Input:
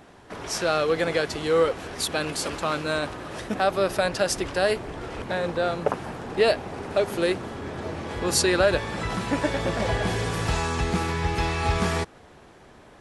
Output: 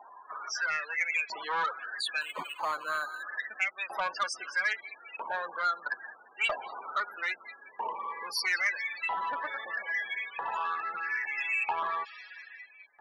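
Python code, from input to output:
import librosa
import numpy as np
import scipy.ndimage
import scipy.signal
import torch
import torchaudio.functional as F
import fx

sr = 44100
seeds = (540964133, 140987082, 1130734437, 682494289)

p1 = np.minimum(x, 2.0 * 10.0 ** (-22.0 / 20.0) - x)
p2 = fx.ripple_eq(p1, sr, per_octave=0.87, db=8, at=(7.7, 8.51), fade=0.02)
p3 = fx.rider(p2, sr, range_db=5, speed_s=0.5)
p4 = p2 + F.gain(torch.from_numpy(p3), -0.5).numpy()
p5 = scipy.signal.sosfilt(scipy.signal.butter(2, 110.0, 'highpass', fs=sr, output='sos'), p4)
p6 = p5 + fx.echo_wet_highpass(p5, sr, ms=202, feedback_pct=64, hz=2500.0, wet_db=-9, dry=0)
p7 = fx.spec_topn(p6, sr, count=32)
p8 = fx.filter_lfo_highpass(p7, sr, shape='saw_up', hz=0.77, low_hz=900.0, high_hz=2700.0, q=6.9)
p9 = 10.0 ** (-8.5 / 20.0) * np.tanh(p8 / 10.0 ** (-8.5 / 20.0))
p10 = fx.dynamic_eq(p9, sr, hz=1100.0, q=1.2, threshold_db=-30.0, ratio=4.0, max_db=-6)
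p11 = fx.resample_linear(p10, sr, factor=8, at=(2.21, 3.23))
y = F.gain(torch.from_numpy(p11), -8.5).numpy()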